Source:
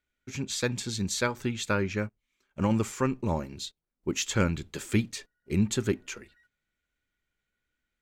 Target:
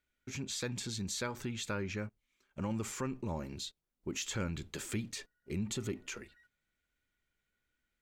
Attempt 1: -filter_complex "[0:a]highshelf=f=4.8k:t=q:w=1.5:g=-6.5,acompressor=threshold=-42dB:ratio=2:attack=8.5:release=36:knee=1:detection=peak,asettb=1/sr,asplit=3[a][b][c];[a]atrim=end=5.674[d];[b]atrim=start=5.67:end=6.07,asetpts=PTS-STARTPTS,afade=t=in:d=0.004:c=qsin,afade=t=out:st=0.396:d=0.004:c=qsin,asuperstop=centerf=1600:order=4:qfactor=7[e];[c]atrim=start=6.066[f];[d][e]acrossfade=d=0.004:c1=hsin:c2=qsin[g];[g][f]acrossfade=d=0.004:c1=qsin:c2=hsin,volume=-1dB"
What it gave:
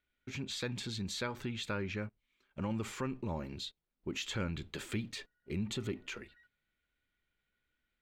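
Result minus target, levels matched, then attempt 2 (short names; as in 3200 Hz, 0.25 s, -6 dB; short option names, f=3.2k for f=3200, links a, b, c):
8000 Hz band -6.5 dB
-filter_complex "[0:a]acompressor=threshold=-42dB:ratio=2:attack=8.5:release=36:knee=1:detection=peak,asettb=1/sr,asplit=3[a][b][c];[a]atrim=end=5.674[d];[b]atrim=start=5.67:end=6.07,asetpts=PTS-STARTPTS,afade=t=in:d=0.004:c=qsin,afade=t=out:st=0.396:d=0.004:c=qsin,asuperstop=centerf=1600:order=4:qfactor=7[e];[c]atrim=start=6.066[f];[d][e]acrossfade=d=0.004:c1=hsin:c2=qsin[g];[g][f]acrossfade=d=0.004:c1=qsin:c2=hsin,volume=-1dB"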